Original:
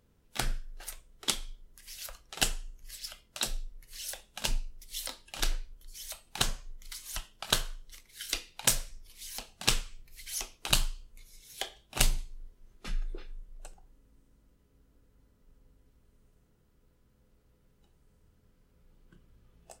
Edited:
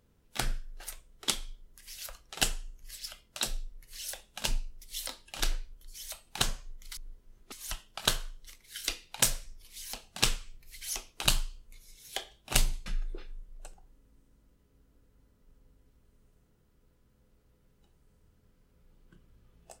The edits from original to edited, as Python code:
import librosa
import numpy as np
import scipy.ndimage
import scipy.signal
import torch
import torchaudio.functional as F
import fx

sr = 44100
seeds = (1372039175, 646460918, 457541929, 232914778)

y = fx.edit(x, sr, fx.move(start_s=12.31, length_s=0.55, to_s=6.97), tone=tone)